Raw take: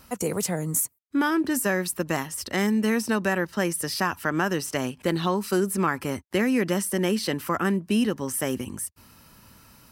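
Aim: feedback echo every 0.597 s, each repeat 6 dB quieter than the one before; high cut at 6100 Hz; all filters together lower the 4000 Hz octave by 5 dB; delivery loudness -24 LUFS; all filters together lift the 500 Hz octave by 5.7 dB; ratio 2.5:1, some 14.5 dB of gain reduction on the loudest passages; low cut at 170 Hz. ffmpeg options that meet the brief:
-af "highpass=170,lowpass=6.1k,equalizer=f=500:t=o:g=7.5,equalizer=f=4k:t=o:g=-6.5,acompressor=threshold=-39dB:ratio=2.5,aecho=1:1:597|1194|1791|2388|2985|3582:0.501|0.251|0.125|0.0626|0.0313|0.0157,volume=12dB"

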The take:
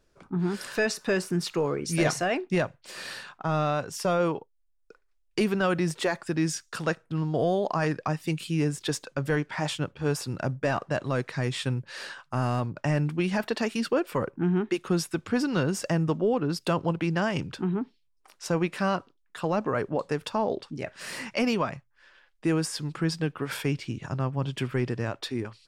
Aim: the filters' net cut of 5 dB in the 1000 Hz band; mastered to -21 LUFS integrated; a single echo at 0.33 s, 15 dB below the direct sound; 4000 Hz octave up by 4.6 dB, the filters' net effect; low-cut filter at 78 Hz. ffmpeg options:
-af "highpass=78,equalizer=f=1k:t=o:g=-7.5,equalizer=f=4k:t=o:g=6.5,aecho=1:1:330:0.178,volume=8dB"

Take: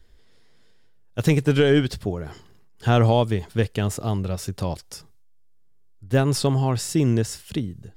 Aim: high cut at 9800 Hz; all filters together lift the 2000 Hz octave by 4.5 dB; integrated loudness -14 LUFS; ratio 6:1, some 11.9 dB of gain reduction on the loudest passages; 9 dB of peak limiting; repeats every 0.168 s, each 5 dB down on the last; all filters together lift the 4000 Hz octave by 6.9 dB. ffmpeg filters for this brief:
-af "lowpass=9.8k,equalizer=f=2k:t=o:g=4,equalizer=f=4k:t=o:g=8,acompressor=threshold=-26dB:ratio=6,alimiter=limit=-24dB:level=0:latency=1,aecho=1:1:168|336|504|672|840|1008|1176:0.562|0.315|0.176|0.0988|0.0553|0.031|0.0173,volume=19dB"

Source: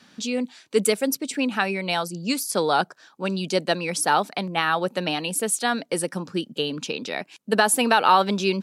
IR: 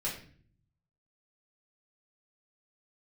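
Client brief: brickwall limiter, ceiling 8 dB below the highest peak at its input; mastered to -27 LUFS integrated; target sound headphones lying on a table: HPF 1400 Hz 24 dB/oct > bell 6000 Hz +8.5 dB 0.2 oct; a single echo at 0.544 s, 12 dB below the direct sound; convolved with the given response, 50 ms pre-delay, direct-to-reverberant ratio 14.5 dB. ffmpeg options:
-filter_complex "[0:a]alimiter=limit=-12dB:level=0:latency=1,aecho=1:1:544:0.251,asplit=2[a][b];[1:a]atrim=start_sample=2205,adelay=50[c];[b][c]afir=irnorm=-1:irlink=0,volume=-18.5dB[d];[a][d]amix=inputs=2:normalize=0,highpass=f=1.4k:w=0.5412,highpass=f=1.4k:w=1.3066,equalizer=f=6k:t=o:w=0.2:g=8.5,volume=1.5dB"

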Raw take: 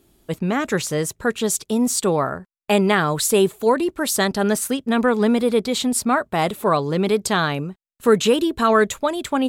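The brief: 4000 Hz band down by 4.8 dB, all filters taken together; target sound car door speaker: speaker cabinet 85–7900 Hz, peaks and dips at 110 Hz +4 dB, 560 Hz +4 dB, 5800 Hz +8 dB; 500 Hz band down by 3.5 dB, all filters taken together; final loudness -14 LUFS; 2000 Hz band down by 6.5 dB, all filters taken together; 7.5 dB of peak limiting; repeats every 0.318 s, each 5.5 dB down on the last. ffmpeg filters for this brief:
-af "equalizer=f=500:t=o:g=-5.5,equalizer=f=2k:t=o:g=-7.5,equalizer=f=4k:t=o:g=-5.5,alimiter=limit=-15dB:level=0:latency=1,highpass=85,equalizer=f=110:t=q:w=4:g=4,equalizer=f=560:t=q:w=4:g=4,equalizer=f=5.8k:t=q:w=4:g=8,lowpass=f=7.9k:w=0.5412,lowpass=f=7.9k:w=1.3066,aecho=1:1:318|636|954|1272|1590|1908|2226:0.531|0.281|0.149|0.079|0.0419|0.0222|0.0118,volume=9.5dB"

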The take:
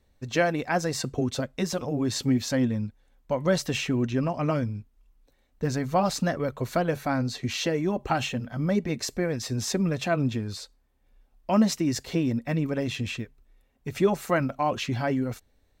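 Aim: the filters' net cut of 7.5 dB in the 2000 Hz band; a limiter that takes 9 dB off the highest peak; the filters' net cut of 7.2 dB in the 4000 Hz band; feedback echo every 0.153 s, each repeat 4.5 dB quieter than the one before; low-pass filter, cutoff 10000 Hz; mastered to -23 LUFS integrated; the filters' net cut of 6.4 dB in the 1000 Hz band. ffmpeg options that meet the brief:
-af "lowpass=10k,equalizer=f=1k:t=o:g=-8.5,equalizer=f=2k:t=o:g=-5,equalizer=f=4k:t=o:g=-7.5,alimiter=limit=-21dB:level=0:latency=1,aecho=1:1:153|306|459|612|765|918|1071|1224|1377:0.596|0.357|0.214|0.129|0.0772|0.0463|0.0278|0.0167|0.01,volume=7dB"

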